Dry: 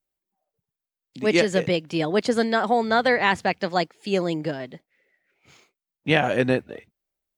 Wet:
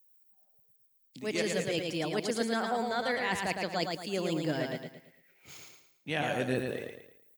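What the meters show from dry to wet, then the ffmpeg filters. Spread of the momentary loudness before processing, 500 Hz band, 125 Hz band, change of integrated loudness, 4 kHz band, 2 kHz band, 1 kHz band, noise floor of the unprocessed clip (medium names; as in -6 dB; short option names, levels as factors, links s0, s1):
8 LU, -10.0 dB, -8.5 dB, -10.0 dB, -7.0 dB, -9.5 dB, -10.5 dB, under -85 dBFS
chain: -af "aemphasis=mode=production:type=50fm,areverse,acompressor=threshold=0.0316:ratio=6,areverse,aecho=1:1:111|222|333|444|555:0.631|0.233|0.0864|0.032|0.0118"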